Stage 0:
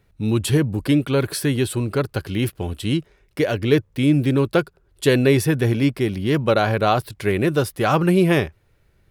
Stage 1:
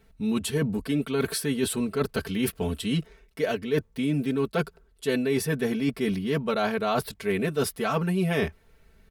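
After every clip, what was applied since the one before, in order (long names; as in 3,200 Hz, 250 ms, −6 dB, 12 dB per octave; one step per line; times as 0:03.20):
comb filter 4.5 ms, depth 94%
reversed playback
downward compressor 6 to 1, threshold −23 dBFS, peak gain reduction 15.5 dB
reversed playback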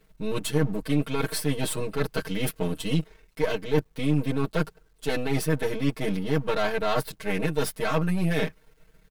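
gain on one half-wave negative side −12 dB
comb filter 6.4 ms, depth 95%
bit-depth reduction 12 bits, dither none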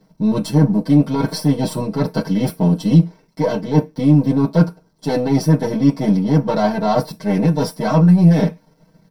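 convolution reverb RT60 0.20 s, pre-delay 3 ms, DRR 4.5 dB
level −3.5 dB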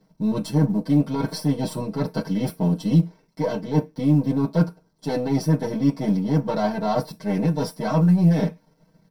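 floating-point word with a short mantissa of 6 bits
level −6 dB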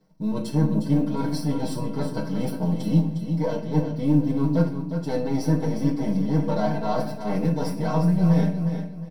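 repeating echo 358 ms, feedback 28%, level −8 dB
rectangular room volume 100 cubic metres, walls mixed, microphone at 0.5 metres
level −4.5 dB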